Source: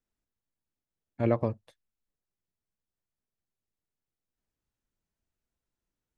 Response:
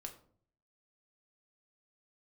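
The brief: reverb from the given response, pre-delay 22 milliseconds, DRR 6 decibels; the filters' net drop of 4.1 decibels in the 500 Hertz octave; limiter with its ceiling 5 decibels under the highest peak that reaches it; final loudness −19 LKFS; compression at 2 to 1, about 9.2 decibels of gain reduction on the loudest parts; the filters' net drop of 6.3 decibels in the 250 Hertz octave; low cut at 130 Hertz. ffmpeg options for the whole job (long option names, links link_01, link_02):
-filter_complex "[0:a]highpass=130,equalizer=frequency=250:width_type=o:gain=-6.5,equalizer=frequency=500:width_type=o:gain=-3.5,acompressor=threshold=-42dB:ratio=2,alimiter=level_in=5.5dB:limit=-24dB:level=0:latency=1,volume=-5.5dB,asplit=2[link_01][link_02];[1:a]atrim=start_sample=2205,adelay=22[link_03];[link_02][link_03]afir=irnorm=-1:irlink=0,volume=-2dB[link_04];[link_01][link_04]amix=inputs=2:normalize=0,volume=26.5dB"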